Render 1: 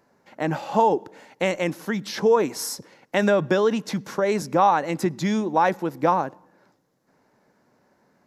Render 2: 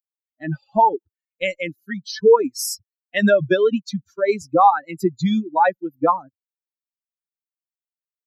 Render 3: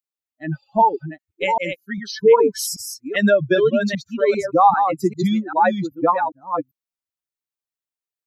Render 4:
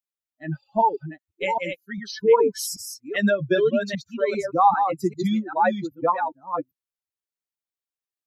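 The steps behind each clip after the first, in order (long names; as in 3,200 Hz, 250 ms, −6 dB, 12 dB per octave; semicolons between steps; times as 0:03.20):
spectral dynamics exaggerated over time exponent 3; level +8.5 dB
delay that plays each chunk backwards 395 ms, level −6 dB
flanger 1 Hz, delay 1.3 ms, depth 4 ms, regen −57%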